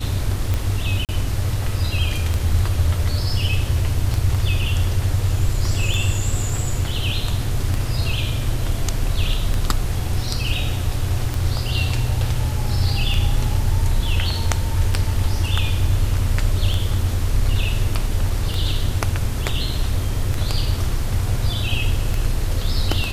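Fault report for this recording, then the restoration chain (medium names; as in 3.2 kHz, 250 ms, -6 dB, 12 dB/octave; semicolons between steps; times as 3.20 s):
tick 33 1/3 rpm -9 dBFS
1.05–1.09 s: dropout 38 ms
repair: de-click; interpolate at 1.05 s, 38 ms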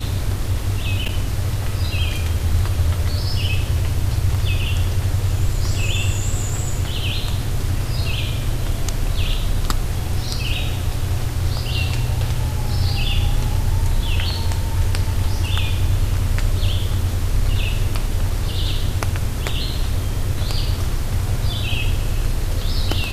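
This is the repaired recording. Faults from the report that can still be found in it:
nothing left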